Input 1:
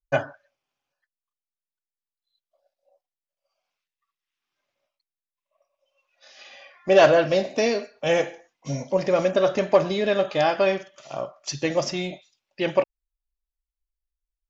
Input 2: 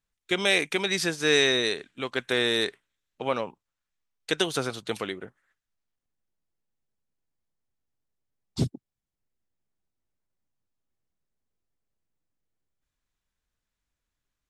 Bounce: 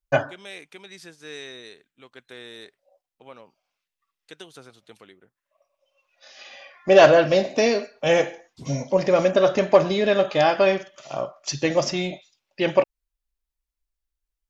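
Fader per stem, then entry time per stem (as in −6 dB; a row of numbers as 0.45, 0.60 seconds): +2.5, −17.0 decibels; 0.00, 0.00 seconds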